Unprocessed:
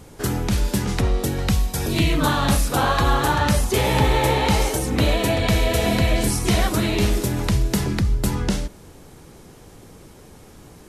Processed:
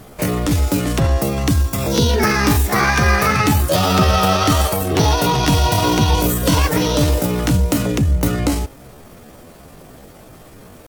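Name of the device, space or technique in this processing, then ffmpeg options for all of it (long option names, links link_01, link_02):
chipmunk voice: -af "asetrate=64194,aresample=44100,atempo=0.686977,volume=4dB"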